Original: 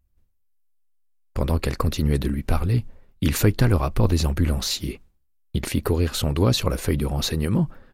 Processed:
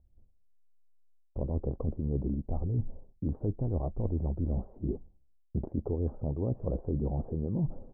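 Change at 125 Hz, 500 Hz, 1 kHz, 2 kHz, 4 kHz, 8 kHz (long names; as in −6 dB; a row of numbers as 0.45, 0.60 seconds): −10.0 dB, −10.0 dB, −16.5 dB, below −40 dB, below −40 dB, below −40 dB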